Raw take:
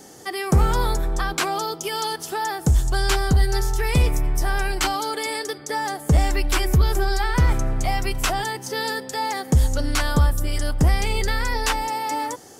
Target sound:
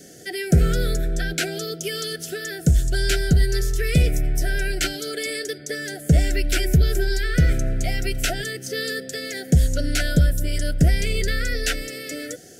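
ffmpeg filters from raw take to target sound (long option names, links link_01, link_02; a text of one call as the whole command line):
ffmpeg -i in.wav -af "asuperstop=centerf=1000:order=20:qfactor=1.6,equalizer=frequency=160:width_type=o:width=0.2:gain=7" out.wav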